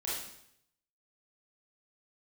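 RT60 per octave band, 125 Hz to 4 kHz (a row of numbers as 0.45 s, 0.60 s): 0.95 s, 0.75 s, 0.75 s, 0.70 s, 0.70 s, 0.70 s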